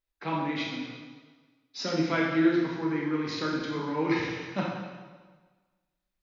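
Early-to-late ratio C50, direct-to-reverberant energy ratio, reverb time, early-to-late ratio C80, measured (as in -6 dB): 0.5 dB, -3.0 dB, 1.4 s, 3.0 dB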